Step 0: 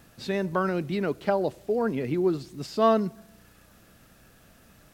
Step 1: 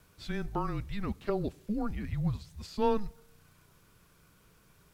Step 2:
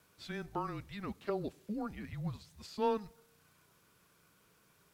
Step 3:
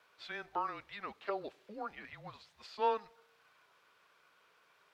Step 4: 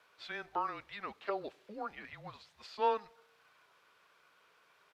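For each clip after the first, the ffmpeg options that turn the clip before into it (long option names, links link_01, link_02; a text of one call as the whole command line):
ffmpeg -i in.wav -af "afreqshift=-210,volume=-6.5dB" out.wav
ffmpeg -i in.wav -af "highpass=frequency=230:poles=1,volume=-3dB" out.wav
ffmpeg -i in.wav -filter_complex "[0:a]acrossover=split=470 4400:gain=0.0794 1 0.126[link_01][link_02][link_03];[link_01][link_02][link_03]amix=inputs=3:normalize=0,volume=4dB" out.wav
ffmpeg -i in.wav -af "aresample=32000,aresample=44100,volume=1dB" out.wav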